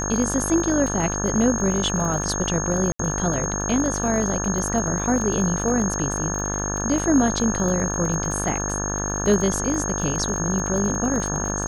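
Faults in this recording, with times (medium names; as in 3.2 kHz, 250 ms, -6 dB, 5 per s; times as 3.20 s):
buzz 50 Hz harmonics 35 -28 dBFS
crackle 26 per s -27 dBFS
whine 6.5 kHz -27 dBFS
2.92–2.99 s: dropout 74 ms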